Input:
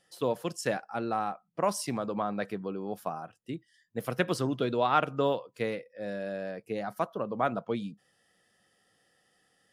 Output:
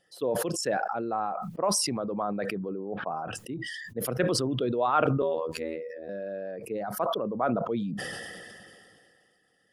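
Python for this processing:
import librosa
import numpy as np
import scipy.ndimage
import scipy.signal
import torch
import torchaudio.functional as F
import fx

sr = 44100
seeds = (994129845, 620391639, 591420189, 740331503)

y = fx.envelope_sharpen(x, sr, power=1.5)
y = fx.bessel_lowpass(y, sr, hz=1600.0, order=8, at=(2.69, 3.12))
y = fx.robotise(y, sr, hz=80.5, at=(5.22, 6.09))
y = fx.sustainer(y, sr, db_per_s=25.0)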